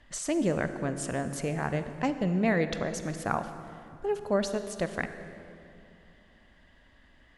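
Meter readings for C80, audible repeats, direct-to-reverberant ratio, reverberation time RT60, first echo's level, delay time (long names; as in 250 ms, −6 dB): 10.5 dB, no echo audible, 9.5 dB, 2.8 s, no echo audible, no echo audible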